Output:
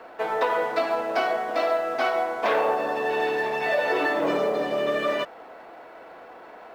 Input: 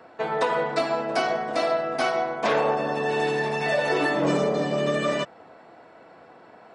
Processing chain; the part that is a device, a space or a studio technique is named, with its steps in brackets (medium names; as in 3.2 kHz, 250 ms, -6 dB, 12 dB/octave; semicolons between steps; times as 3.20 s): phone line with mismatched companding (band-pass 340–3500 Hz; companding laws mixed up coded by mu)